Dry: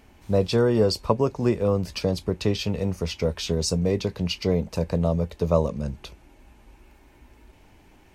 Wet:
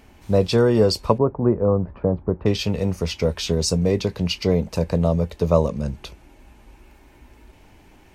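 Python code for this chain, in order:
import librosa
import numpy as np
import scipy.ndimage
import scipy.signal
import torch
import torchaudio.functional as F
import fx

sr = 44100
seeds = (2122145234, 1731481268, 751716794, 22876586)

y = fx.lowpass(x, sr, hz=1300.0, slope=24, at=(1.18, 2.46))
y = F.gain(torch.from_numpy(y), 3.5).numpy()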